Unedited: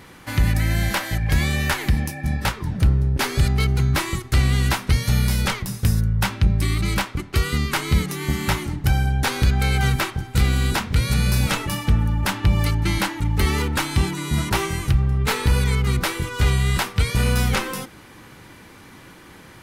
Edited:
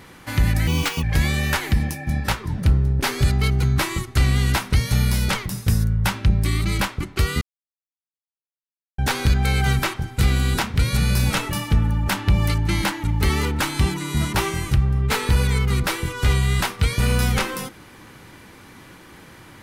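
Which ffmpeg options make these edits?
-filter_complex "[0:a]asplit=5[s0][s1][s2][s3][s4];[s0]atrim=end=0.674[s5];[s1]atrim=start=0.67:end=1.2,asetpts=PTS-STARTPTS,asetrate=64386,aresample=44100[s6];[s2]atrim=start=1.196:end=7.58,asetpts=PTS-STARTPTS,afade=t=out:st=6.38:d=0.004:c=hsin[s7];[s3]atrim=start=7.58:end=9.15,asetpts=PTS-STARTPTS,volume=0[s8];[s4]atrim=start=9.15,asetpts=PTS-STARTPTS,afade=t=in:d=0.004:c=hsin[s9];[s5][s6]acrossfade=d=0.004:c1=hsin:c2=hsin[s10];[s7][s8][s9]concat=n=3:v=0:a=1[s11];[s10][s11]acrossfade=d=0.004:c1=hsin:c2=hsin"

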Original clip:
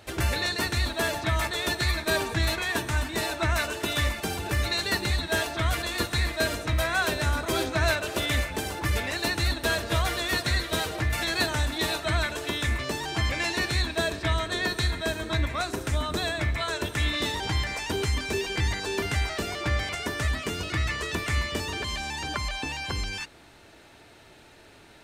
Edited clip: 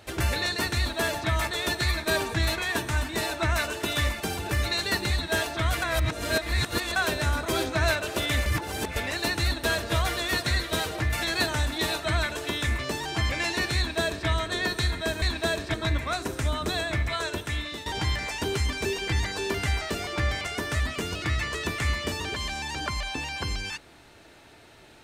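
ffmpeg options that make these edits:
-filter_complex "[0:a]asplit=8[s0][s1][s2][s3][s4][s5][s6][s7];[s0]atrim=end=5.822[s8];[s1]atrim=start=5.818:end=6.962,asetpts=PTS-STARTPTS,areverse[s9];[s2]atrim=start=6.958:end=8.462[s10];[s3]atrim=start=8.458:end=8.962,asetpts=PTS-STARTPTS,areverse[s11];[s4]atrim=start=8.958:end=15.222[s12];[s5]atrim=start=13.758:end=14.282[s13];[s6]atrim=start=15.218:end=17.34,asetpts=PTS-STARTPTS,afade=t=out:st=1.472:d=0.65:silence=0.251189[s14];[s7]atrim=start=17.34,asetpts=PTS-STARTPTS,afade=t=in:d=0.004:c=hsin:silence=0.251189[s15];[s8][s9]acrossfade=d=0.004:c1=hsin:c2=hsin[s16];[s16][s10]acrossfade=d=0.004:c1=hsin:c2=hsin[s17];[s17][s11]acrossfade=d=0.004:c1=hsin:c2=hsin[s18];[s18][s12]acrossfade=d=0.004:c1=hsin:c2=hsin[s19];[s19][s13]acrossfade=d=0.004:c1=hsin:c2=hsin[s20];[s14][s15]concat=n=2:v=0:a=1[s21];[s20][s21]acrossfade=d=0.004:c1=hsin:c2=hsin"

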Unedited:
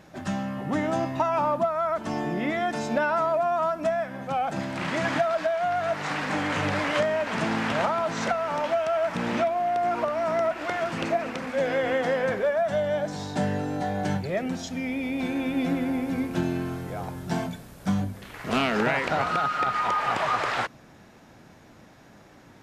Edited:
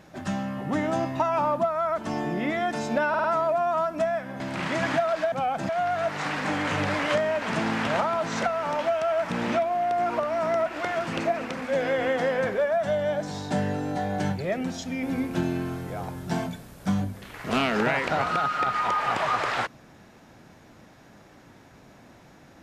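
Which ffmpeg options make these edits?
-filter_complex "[0:a]asplit=8[s0][s1][s2][s3][s4][s5][s6][s7];[s0]atrim=end=3.142[s8];[s1]atrim=start=3.088:end=3.142[s9];[s2]atrim=start=3.088:end=3.142[s10];[s3]atrim=start=3.088:end=4.252[s11];[s4]atrim=start=4.618:end=5.542[s12];[s5]atrim=start=4.248:end=4.622[s13];[s6]atrim=start=5.538:end=14.882[s14];[s7]atrim=start=16.028[s15];[s8][s9]acrossfade=d=0.004:c1=hsin:c2=hsin[s16];[s16][s10]acrossfade=d=0.004:c1=hsin:c2=hsin[s17];[s17][s11]acrossfade=d=0.004:c1=hsin:c2=hsin[s18];[s18][s12]acrossfade=d=0.004:c1=hsin:c2=hsin[s19];[s19][s13]acrossfade=d=0.004:c1=hsin:c2=hsin[s20];[s20][s14]acrossfade=d=0.004:c1=hsin:c2=hsin[s21];[s21][s15]acrossfade=d=0.004:c1=hsin:c2=hsin"

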